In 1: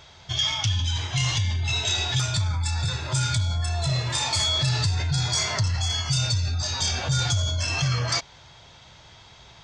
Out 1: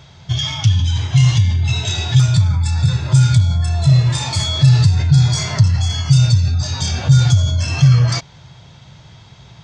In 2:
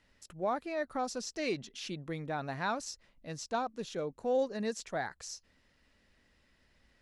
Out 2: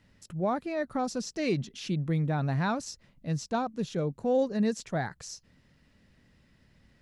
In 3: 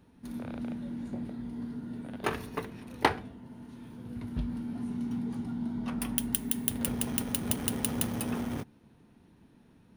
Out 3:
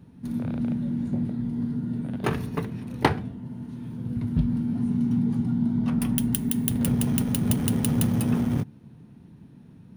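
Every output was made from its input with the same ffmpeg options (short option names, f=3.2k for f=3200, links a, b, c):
-af "equalizer=f=140:w=0.79:g=14,volume=1.5dB"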